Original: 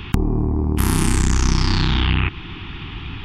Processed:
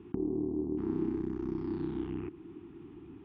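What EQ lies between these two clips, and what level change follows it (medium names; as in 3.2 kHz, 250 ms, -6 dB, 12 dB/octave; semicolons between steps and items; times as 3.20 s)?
band-pass filter 340 Hz, Q 3.6; distance through air 180 m; -4.0 dB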